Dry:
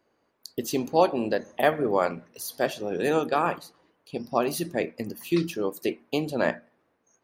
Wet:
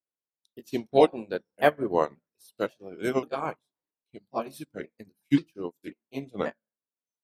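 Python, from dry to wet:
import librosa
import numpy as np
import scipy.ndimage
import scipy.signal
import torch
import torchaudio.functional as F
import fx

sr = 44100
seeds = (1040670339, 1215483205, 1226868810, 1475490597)

y = fx.pitch_ramps(x, sr, semitones=-3.5, every_ms=538)
y = fx.upward_expand(y, sr, threshold_db=-44.0, expansion=2.5)
y = y * 10.0 ** (5.5 / 20.0)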